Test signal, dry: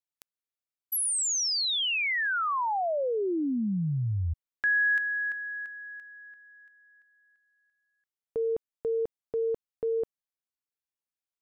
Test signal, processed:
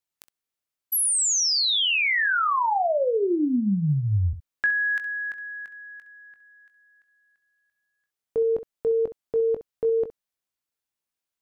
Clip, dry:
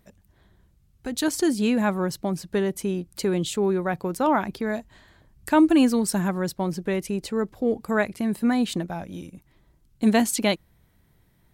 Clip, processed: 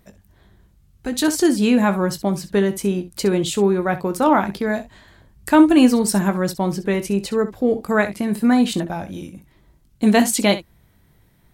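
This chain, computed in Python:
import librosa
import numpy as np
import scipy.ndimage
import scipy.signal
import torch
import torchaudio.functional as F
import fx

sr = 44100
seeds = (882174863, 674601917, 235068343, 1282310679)

y = fx.room_early_taps(x, sr, ms=(20, 65), db=(-10.0, -14.0))
y = F.gain(torch.from_numpy(y), 5.0).numpy()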